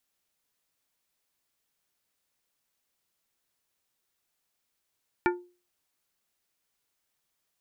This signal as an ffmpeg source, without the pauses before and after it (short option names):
-f lavfi -i "aevalsrc='0.1*pow(10,-3*t/0.35)*sin(2*PI*355*t)+0.0794*pow(10,-3*t/0.184)*sin(2*PI*887.5*t)+0.0631*pow(10,-3*t/0.133)*sin(2*PI*1420*t)+0.0501*pow(10,-3*t/0.113)*sin(2*PI*1775*t)+0.0398*pow(10,-3*t/0.094)*sin(2*PI*2307.5*t)':d=0.89:s=44100"